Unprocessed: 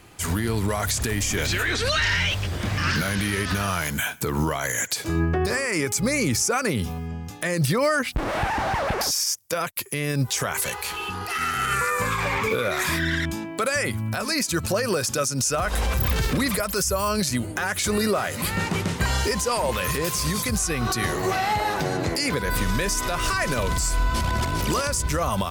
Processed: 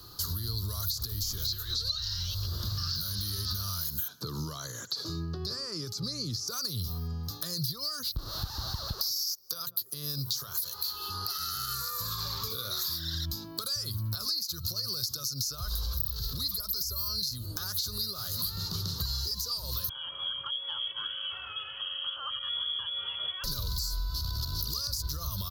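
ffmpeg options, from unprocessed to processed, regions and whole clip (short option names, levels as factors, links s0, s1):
-filter_complex "[0:a]asettb=1/sr,asplit=3[s0][s1][s2];[s0]atrim=end=4.084[s3];[s1]atrim=start=4.08:end=6.48,asetpts=PTS-STARTPTS,afade=t=in:d=0.004:c=qsin,afade=t=out:st=2.396:d=0.004:c=qsin,acrossover=split=2800[s4][s5];[s5]acompressor=threshold=0.0158:ratio=4:attack=1:release=60[s6];[s4][s6]amix=inputs=2:normalize=0,highpass=240,lowpass=7700,lowshelf=f=390:g=9.5[s7];[s2]atrim=start=6.476[s8];[s3][s7]acrossfade=d=0.004:c1=hsin:c2=qsin[s9];[s9][s8]acrossfade=d=0.004:c1=qsin:c2=hsin,asettb=1/sr,asplit=3[s10][s11][s12];[s10]atrim=end=8.944[s13];[s11]atrim=start=8.94:end=13.14,asetpts=PTS-STARTPTS,afade=t=in:d=0.004:c=qsin,afade=t=out:st=4.196:d=0.004:c=qsin,lowshelf=f=120:g=-7,bandreject=f=60:t=h:w=6,bandreject=f=120:t=h:w=6,bandreject=f=180:t=h:w=6,bandreject=f=240:t=h:w=6,bandreject=f=300:t=h:w=6,bandreject=f=360:t=h:w=6,bandreject=f=420:t=h:w=6,bandreject=f=480:t=h:w=6,bandreject=f=540:t=h:w=6,bandreject=f=600:t=h:w=6,asplit=2[s14][s15];[s15]adelay=159,lowpass=f=1000:p=1,volume=0.0708,asplit=2[s16][s17];[s17]adelay=159,lowpass=f=1000:p=1,volume=0.46,asplit=2[s18][s19];[s19]adelay=159,lowpass=f=1000:p=1,volume=0.46[s20];[s14][s16][s18][s20]amix=inputs=4:normalize=0,atrim=end_sample=185220[s21];[s12]atrim=start=13.136[s22];[s13][s21]acrossfade=d=0.004:c1=hsin:c2=qsin[s23];[s23][s22]acrossfade=d=0.004:c1=qsin:c2=hsin,asettb=1/sr,asplit=3[s24][s25][s26];[s24]atrim=end=19.894[s27];[s25]atrim=start=19.89:end=23.44,asetpts=PTS-STARTPTS,afade=t=in:d=0.004:c=qsin,afade=t=out:st=3.546:d=0.004:c=qsin,lowpass=f=2900:t=q:w=0.5098,lowpass=f=2900:t=q:w=0.6013,lowpass=f=2900:t=q:w=0.9,lowpass=f=2900:t=q:w=2.563,afreqshift=-3400,aeval=exprs='val(0)+0.00562*sin(2*PI*550*n/s)':c=same,highpass=53[s28];[s26]atrim=start=23.436[s29];[s27][s28]acrossfade=d=0.004:c1=hsin:c2=qsin[s30];[s30][s29]acrossfade=d=0.004:c1=qsin:c2=hsin,acrossover=split=150|3000[s31][s32][s33];[s32]acompressor=threshold=0.0178:ratio=10[s34];[s31][s34][s33]amix=inputs=3:normalize=0,firequalizer=gain_entry='entry(110,0);entry(220,-8);entry(380,-5);entry(780,-11);entry(1200,2);entry(2200,-25);entry(4200,14);entry(8400,-12);entry(13000,13)':delay=0.05:min_phase=1,acompressor=threshold=0.0316:ratio=6"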